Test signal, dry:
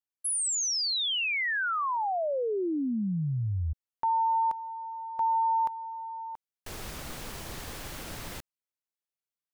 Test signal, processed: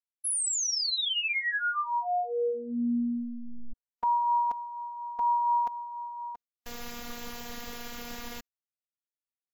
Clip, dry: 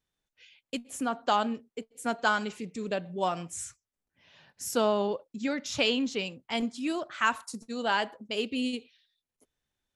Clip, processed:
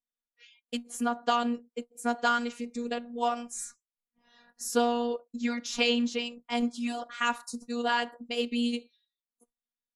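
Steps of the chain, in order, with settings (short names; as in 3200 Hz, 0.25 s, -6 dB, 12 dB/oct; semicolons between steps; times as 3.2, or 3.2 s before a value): spectral noise reduction 17 dB; vibrato 4.2 Hz 34 cents; robotiser 238 Hz; gain +2.5 dB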